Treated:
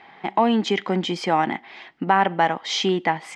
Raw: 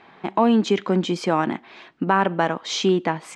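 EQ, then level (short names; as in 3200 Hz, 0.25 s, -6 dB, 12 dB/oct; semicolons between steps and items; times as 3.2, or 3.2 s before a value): thirty-one-band EQ 800 Hz +9 dB, 2000 Hz +11 dB, 3150 Hz +6 dB, 5000 Hz +5 dB; -3.0 dB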